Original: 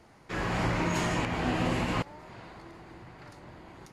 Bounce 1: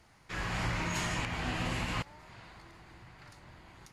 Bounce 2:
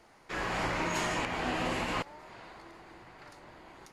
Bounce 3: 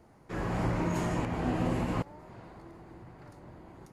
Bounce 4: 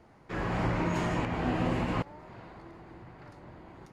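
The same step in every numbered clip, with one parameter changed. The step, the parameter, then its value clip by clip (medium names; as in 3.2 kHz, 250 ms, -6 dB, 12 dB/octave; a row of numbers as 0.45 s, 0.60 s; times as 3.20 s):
peaking EQ, frequency: 380 Hz, 110 Hz, 3.4 kHz, 14 kHz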